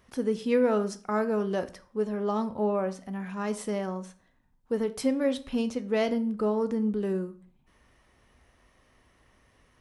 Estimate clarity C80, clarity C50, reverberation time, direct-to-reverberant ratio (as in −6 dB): 21.0 dB, 16.5 dB, 0.45 s, 10.0 dB